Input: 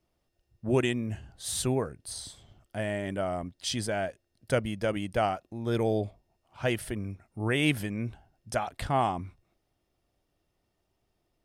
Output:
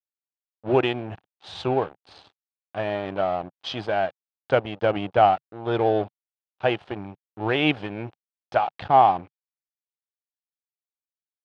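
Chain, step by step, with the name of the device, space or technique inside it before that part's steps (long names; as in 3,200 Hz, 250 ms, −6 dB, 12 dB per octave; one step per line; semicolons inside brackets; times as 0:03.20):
0:04.81–0:05.45: low-shelf EQ 220 Hz +5 dB
blown loudspeaker (dead-zone distortion −40 dBFS; loudspeaker in its box 130–3,600 Hz, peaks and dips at 140 Hz −5 dB, 230 Hz −9 dB, 790 Hz +8 dB, 2,000 Hz −6 dB)
level +7.5 dB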